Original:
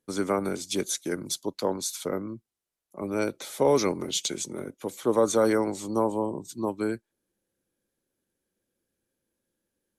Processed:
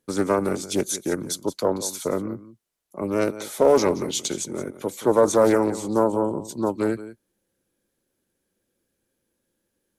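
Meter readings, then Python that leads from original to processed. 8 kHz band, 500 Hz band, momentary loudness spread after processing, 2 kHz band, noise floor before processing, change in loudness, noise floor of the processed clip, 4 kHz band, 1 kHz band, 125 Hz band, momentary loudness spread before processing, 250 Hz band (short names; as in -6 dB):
+3.0 dB, +5.5 dB, 13 LU, +3.5 dB, -85 dBFS, +4.5 dB, -78 dBFS, +0.5 dB, +5.0 dB, +4.5 dB, 12 LU, +4.5 dB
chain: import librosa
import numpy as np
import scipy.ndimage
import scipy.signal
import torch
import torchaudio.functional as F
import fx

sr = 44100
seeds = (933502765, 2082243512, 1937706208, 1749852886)

p1 = fx.dynamic_eq(x, sr, hz=3400.0, q=0.77, threshold_db=-45.0, ratio=4.0, max_db=-6)
p2 = p1 + fx.echo_single(p1, sr, ms=175, db=-15.0, dry=0)
p3 = fx.doppler_dist(p2, sr, depth_ms=0.25)
y = p3 * librosa.db_to_amplitude(5.5)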